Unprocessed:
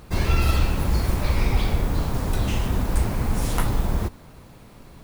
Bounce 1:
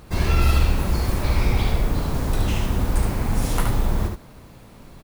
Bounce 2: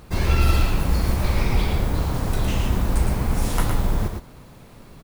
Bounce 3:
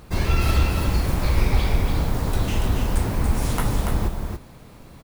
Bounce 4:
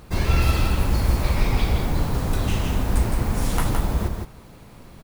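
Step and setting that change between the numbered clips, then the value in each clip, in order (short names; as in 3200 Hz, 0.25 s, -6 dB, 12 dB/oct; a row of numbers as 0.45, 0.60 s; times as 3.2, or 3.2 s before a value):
echo, time: 72, 111, 285, 165 ms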